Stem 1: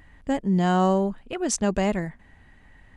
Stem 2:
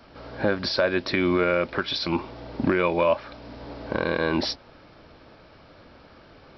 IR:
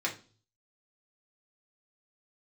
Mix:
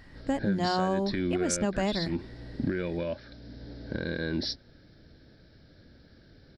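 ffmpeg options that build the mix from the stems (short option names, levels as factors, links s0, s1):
-filter_complex "[0:a]bandreject=f=60:t=h:w=6,bandreject=f=120:t=h:w=6,bandreject=f=180:t=h:w=6,volume=0.944[s0];[1:a]firequalizer=gain_entry='entry(130,0);entry(1100,-25);entry(1600,-5);entry(2600,-17);entry(3800,-3)':delay=0.05:min_phase=1,volume=0.944[s1];[s0][s1]amix=inputs=2:normalize=0,acompressor=threshold=0.0562:ratio=3"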